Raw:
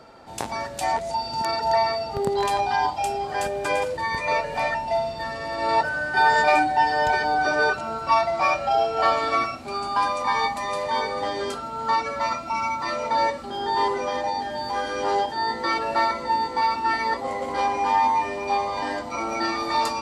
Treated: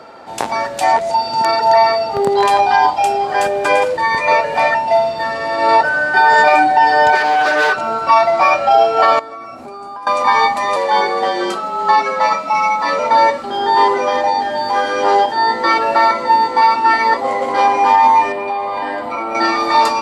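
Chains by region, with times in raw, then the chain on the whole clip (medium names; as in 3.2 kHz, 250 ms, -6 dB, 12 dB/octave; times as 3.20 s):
7.15–7.77 s: hard clipper -20.5 dBFS + bass shelf 230 Hz -7.5 dB + loudspeaker Doppler distortion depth 0.13 ms
9.19–10.07 s: peaking EQ 3.1 kHz -10.5 dB 2.3 oct + compression 16:1, threshold -37 dBFS
10.76–12.99 s: high-pass 210 Hz 24 dB/octave + hum notches 60/120/180/240/300/360/420 Hz + frequency shift -43 Hz
18.32–19.35 s: peaking EQ 6.1 kHz -14 dB 0.72 oct + compression 4:1, threshold -28 dBFS
whole clip: high-pass 400 Hz 6 dB/octave; treble shelf 3.5 kHz -8 dB; loudness maximiser +13.5 dB; trim -1 dB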